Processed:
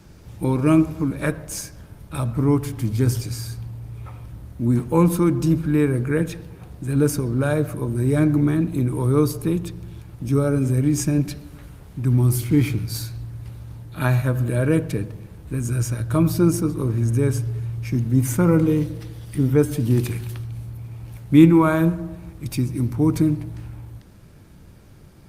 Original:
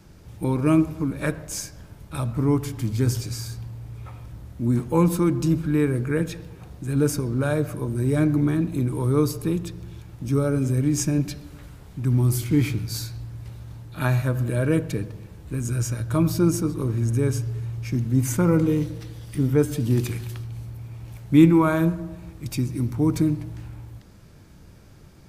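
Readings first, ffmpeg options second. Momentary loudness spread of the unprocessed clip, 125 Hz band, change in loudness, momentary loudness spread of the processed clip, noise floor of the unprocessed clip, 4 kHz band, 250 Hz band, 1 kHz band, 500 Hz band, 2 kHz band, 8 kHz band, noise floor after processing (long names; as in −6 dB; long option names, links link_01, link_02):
18 LU, +2.5 dB, +2.5 dB, 18 LU, −47 dBFS, 0.0 dB, +2.5 dB, +2.5 dB, +2.5 dB, +2.0 dB, +0.5 dB, −46 dBFS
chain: -af "volume=2.5dB" -ar 48000 -c:a libopus -b:a 48k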